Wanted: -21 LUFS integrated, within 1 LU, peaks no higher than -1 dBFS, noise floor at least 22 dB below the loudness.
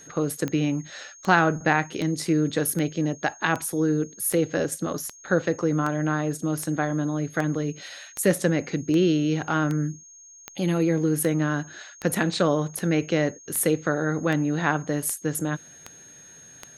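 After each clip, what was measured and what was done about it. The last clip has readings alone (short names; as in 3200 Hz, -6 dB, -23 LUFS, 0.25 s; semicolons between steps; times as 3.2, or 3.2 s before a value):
clicks 22; steady tone 6500 Hz; tone level -46 dBFS; loudness -25.0 LUFS; peak -4.0 dBFS; loudness target -21.0 LUFS
-> de-click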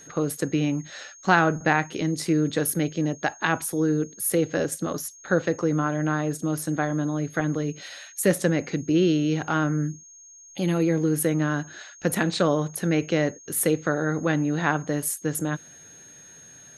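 clicks 0; steady tone 6500 Hz; tone level -46 dBFS
-> notch 6500 Hz, Q 30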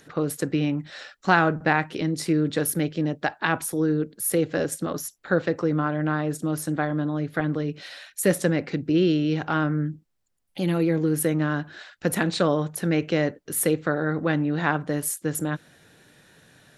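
steady tone none; loudness -25.0 LUFS; peak -4.0 dBFS; loudness target -21.0 LUFS
-> gain +4 dB; limiter -1 dBFS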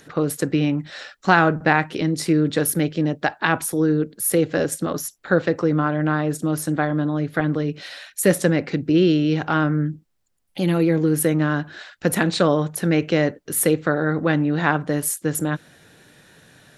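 loudness -21.0 LUFS; peak -1.0 dBFS; noise floor -58 dBFS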